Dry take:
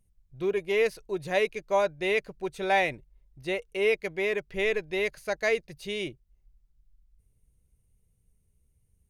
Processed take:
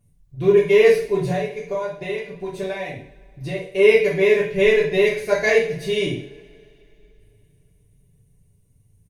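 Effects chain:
0:01.30–0:03.62: downward compressor 10 to 1, threshold −35 dBFS, peak gain reduction 15.5 dB
parametric band 190 Hz +8 dB 3 octaves
notch filter 1,300 Hz, Q 9.9
comb filter 7 ms, depth 53%
coupled-rooms reverb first 0.51 s, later 3.1 s, from −27 dB, DRR −6 dB

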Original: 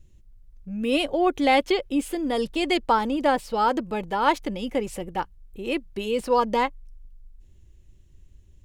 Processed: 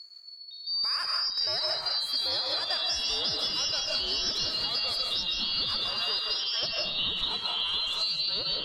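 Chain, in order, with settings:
band-splitting scrambler in four parts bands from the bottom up 2341
delay with pitch and tempo change per echo 509 ms, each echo −3 semitones, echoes 3
0:06.19–0:06.63: band-pass filter 650–3,600 Hz
comb and all-pass reverb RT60 0.57 s, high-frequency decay 0.55×, pre-delay 115 ms, DRR 1 dB
downward compressor 10 to 1, threshold −28 dBFS, peak gain reduction 16 dB
level +1.5 dB

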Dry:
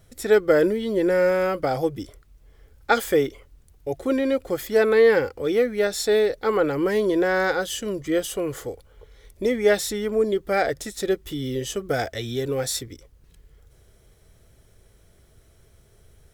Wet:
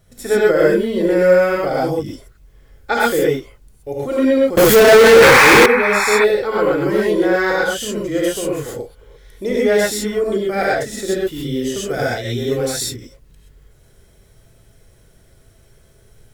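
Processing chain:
reverb whose tail is shaped and stops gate 150 ms rising, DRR −5.5 dB
0:05.22–0:06.25: sound drawn into the spectrogram noise 760–2,600 Hz −17 dBFS
0:04.57–0:05.66: power curve on the samples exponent 0.35
level −1 dB

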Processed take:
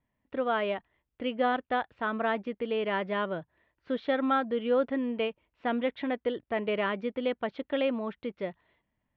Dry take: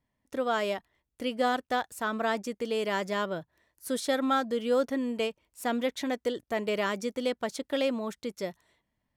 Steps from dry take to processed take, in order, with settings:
Butterworth low-pass 3,200 Hz 36 dB per octave

